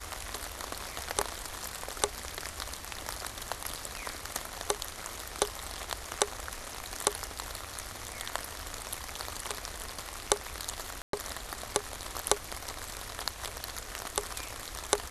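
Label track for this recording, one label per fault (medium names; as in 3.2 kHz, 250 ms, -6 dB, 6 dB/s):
11.020000	11.130000	dropout 113 ms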